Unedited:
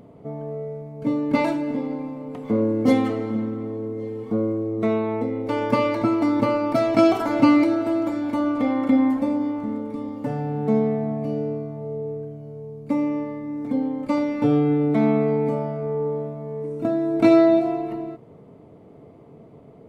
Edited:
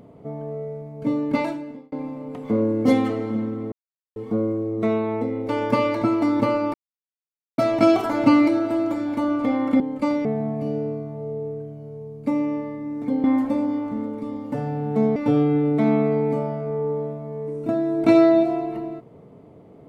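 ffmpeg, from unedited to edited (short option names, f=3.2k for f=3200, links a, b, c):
-filter_complex "[0:a]asplit=9[a][b][c][d][e][f][g][h][i];[a]atrim=end=1.92,asetpts=PTS-STARTPTS,afade=t=out:st=1.22:d=0.7[j];[b]atrim=start=1.92:end=3.72,asetpts=PTS-STARTPTS,afade=t=in:d=0.004:c=hsin,afade=t=out:st=1.796:d=0.004:c=hsin[k];[c]atrim=start=3.72:end=4.16,asetpts=PTS-STARTPTS,volume=0[l];[d]atrim=start=4.16:end=6.74,asetpts=PTS-STARTPTS,afade=t=in:d=0.004:c=hsin,afade=t=out:st=2.576:d=0.004:c=hsin,apad=pad_dur=0.84[m];[e]atrim=start=6.74:end=8.962,asetpts=PTS-STARTPTS,afade=t=in:d=0.004:c=hsin[n];[f]atrim=start=13.868:end=14.322[o];[g]atrim=start=10.878:end=13.872[p];[h]atrim=start=8.958:end=10.882[q];[i]atrim=start=14.318[r];[j][k][l][m][n]concat=n=5:v=0:a=1[s];[s][o]acrossfade=d=0.004:c1=hsin:c2=hsin[t];[t][p]acrossfade=d=0.004:c1=hsin:c2=hsin[u];[u][q]acrossfade=d=0.004:c1=hsin:c2=hsin[v];[v][r]acrossfade=d=0.004:c1=hsin:c2=hsin"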